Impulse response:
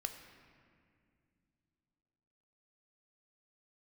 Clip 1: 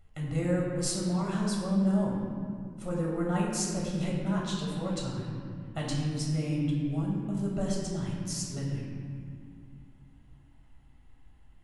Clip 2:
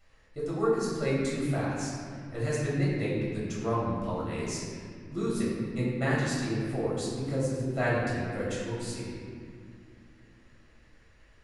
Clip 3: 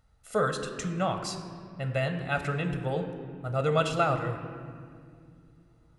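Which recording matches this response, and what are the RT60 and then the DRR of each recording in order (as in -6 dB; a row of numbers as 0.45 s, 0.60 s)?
3; 2.2 s, 2.2 s, 2.3 s; -4.0 dB, -8.0 dB, 6.0 dB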